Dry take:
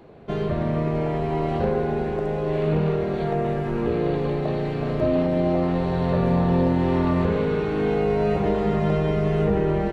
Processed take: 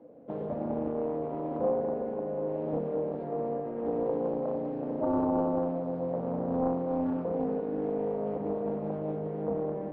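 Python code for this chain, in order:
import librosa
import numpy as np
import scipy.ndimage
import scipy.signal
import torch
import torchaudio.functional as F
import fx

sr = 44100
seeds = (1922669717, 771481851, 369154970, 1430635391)

p1 = fx.rider(x, sr, range_db=4, speed_s=2.0)
p2 = fx.double_bandpass(p1, sr, hz=380.0, octaves=0.83)
p3 = p2 + fx.echo_single(p2, sr, ms=202, db=-7.0, dry=0)
y = fx.doppler_dist(p3, sr, depth_ms=0.48)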